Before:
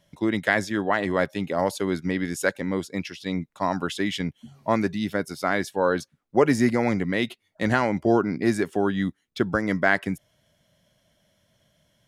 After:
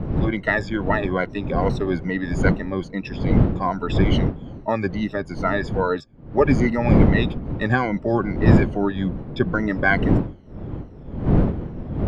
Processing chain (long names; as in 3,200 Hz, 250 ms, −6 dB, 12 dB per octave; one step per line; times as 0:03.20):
rippled gain that drifts along the octave scale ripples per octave 1.9, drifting −2.4 Hz, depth 21 dB
wind on the microphone 220 Hz −20 dBFS
high-frequency loss of the air 150 metres
level −2.5 dB